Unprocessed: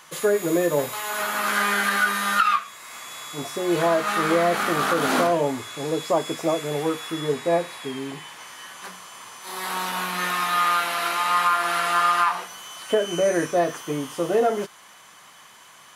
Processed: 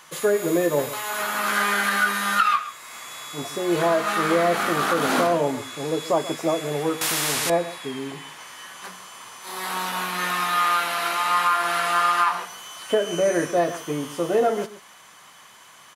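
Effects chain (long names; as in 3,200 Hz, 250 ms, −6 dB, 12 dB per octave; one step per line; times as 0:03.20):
slap from a distant wall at 23 metres, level −15 dB
0:07.01–0:07.50: every bin compressed towards the loudest bin 4 to 1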